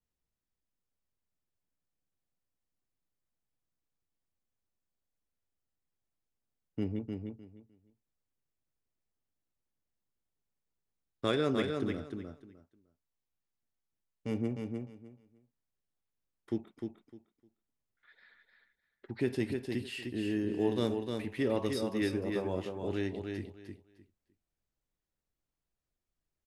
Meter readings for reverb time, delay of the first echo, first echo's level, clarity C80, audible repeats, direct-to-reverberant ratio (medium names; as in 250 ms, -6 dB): no reverb, 304 ms, -5.0 dB, no reverb, 3, no reverb